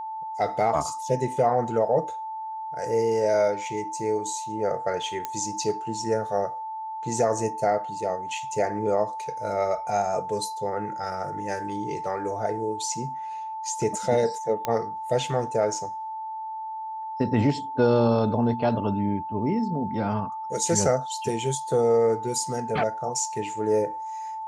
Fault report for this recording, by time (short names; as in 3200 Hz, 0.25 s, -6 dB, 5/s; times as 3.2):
tone 880 Hz -31 dBFS
5.25 pop -14 dBFS
14.65 pop -12 dBFS